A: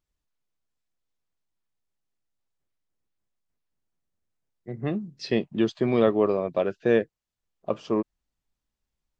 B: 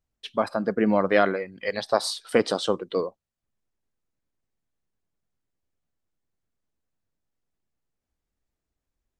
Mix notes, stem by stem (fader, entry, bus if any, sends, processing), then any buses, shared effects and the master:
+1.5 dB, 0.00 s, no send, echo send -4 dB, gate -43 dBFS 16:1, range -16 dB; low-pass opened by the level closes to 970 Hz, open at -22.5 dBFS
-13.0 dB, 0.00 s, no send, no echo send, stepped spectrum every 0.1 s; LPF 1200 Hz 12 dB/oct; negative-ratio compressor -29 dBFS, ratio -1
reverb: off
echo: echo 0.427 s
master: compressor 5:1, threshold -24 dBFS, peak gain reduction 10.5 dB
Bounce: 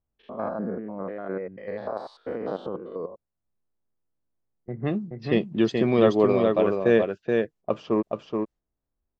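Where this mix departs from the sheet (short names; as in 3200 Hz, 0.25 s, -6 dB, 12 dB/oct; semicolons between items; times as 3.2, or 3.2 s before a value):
stem B -13.0 dB -> -2.0 dB; master: missing compressor 5:1, threshold -24 dBFS, peak gain reduction 10.5 dB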